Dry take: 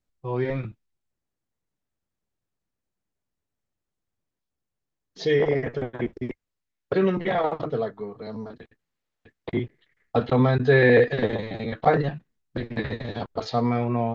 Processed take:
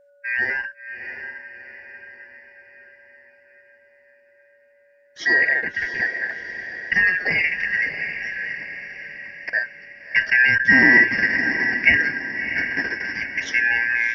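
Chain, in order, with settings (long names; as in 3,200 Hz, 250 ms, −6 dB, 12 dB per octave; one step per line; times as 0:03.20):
band-splitting scrambler in four parts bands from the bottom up 2143
steady tone 570 Hz −56 dBFS
feedback delay with all-pass diffusion 678 ms, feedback 52%, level −9 dB
level +3 dB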